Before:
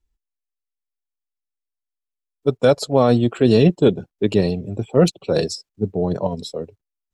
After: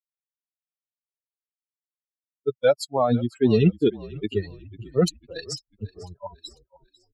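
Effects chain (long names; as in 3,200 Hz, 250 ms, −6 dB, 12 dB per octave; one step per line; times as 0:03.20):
spectral dynamics exaggerated over time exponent 3
echo with shifted repeats 497 ms, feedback 41%, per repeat −39 Hz, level −19.5 dB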